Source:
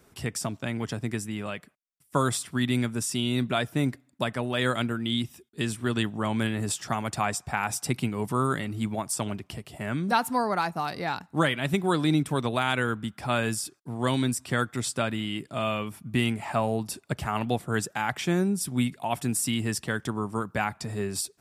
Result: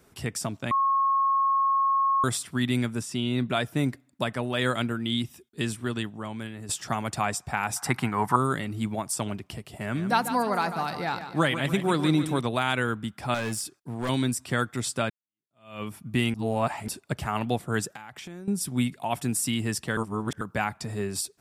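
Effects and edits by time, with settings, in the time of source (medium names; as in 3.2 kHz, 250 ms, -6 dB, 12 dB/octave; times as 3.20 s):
0.71–2.24 s: bleep 1.09 kHz -20 dBFS
3.01–3.50 s: treble shelf 5.4 kHz -11 dB
5.67–6.69 s: fade out quadratic, to -10.5 dB
7.76–8.36 s: high-order bell 1.2 kHz +13.5 dB
9.59–12.41 s: feedback delay 146 ms, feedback 50%, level -10.5 dB
13.34–14.09 s: hard clipper -25.5 dBFS
15.10–15.83 s: fade in exponential
16.34–16.88 s: reverse
17.92–18.48 s: compression 16:1, threshold -37 dBFS
19.97–20.41 s: reverse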